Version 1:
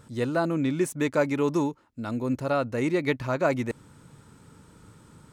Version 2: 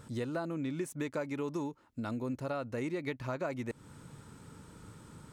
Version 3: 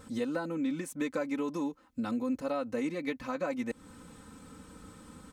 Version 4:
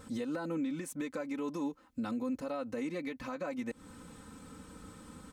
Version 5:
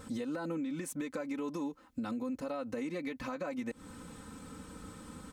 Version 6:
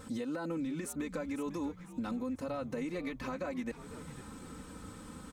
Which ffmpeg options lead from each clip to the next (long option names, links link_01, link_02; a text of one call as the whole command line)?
ffmpeg -i in.wav -af "acompressor=threshold=-35dB:ratio=4" out.wav
ffmpeg -i in.wav -af "aecho=1:1:3.9:0.93" out.wav
ffmpeg -i in.wav -af "alimiter=level_in=4.5dB:limit=-24dB:level=0:latency=1:release=114,volume=-4.5dB" out.wav
ffmpeg -i in.wav -af "acompressor=threshold=-36dB:ratio=6,volume=2.5dB" out.wav
ffmpeg -i in.wav -filter_complex "[0:a]asplit=5[link_01][link_02][link_03][link_04][link_05];[link_02]adelay=500,afreqshift=-99,volume=-13.5dB[link_06];[link_03]adelay=1000,afreqshift=-198,volume=-20.2dB[link_07];[link_04]adelay=1500,afreqshift=-297,volume=-27dB[link_08];[link_05]adelay=2000,afreqshift=-396,volume=-33.7dB[link_09];[link_01][link_06][link_07][link_08][link_09]amix=inputs=5:normalize=0" out.wav